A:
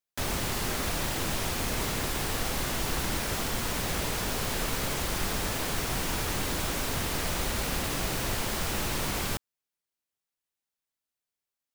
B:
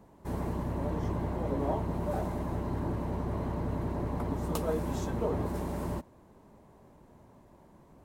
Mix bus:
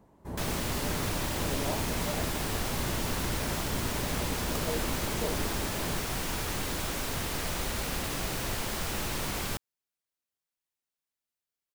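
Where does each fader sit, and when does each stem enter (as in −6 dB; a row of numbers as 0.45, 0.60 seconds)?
−2.5, −3.5 decibels; 0.20, 0.00 seconds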